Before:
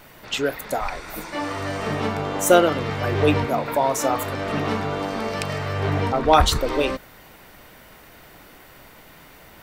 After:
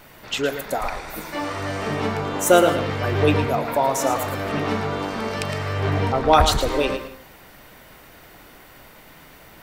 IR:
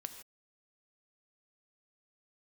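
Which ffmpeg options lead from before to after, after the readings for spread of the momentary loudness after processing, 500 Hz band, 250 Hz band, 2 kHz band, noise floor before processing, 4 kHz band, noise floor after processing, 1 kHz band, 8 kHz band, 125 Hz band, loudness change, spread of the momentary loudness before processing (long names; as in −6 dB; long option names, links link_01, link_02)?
12 LU, +0.5 dB, 0.0 dB, +0.5 dB, −48 dBFS, +0.5 dB, −47 dBFS, +0.5 dB, +0.5 dB, +1.0 dB, +0.5 dB, 11 LU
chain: -filter_complex "[0:a]asplit=2[link_01][link_02];[1:a]atrim=start_sample=2205,adelay=112[link_03];[link_02][link_03]afir=irnorm=-1:irlink=0,volume=-6dB[link_04];[link_01][link_04]amix=inputs=2:normalize=0"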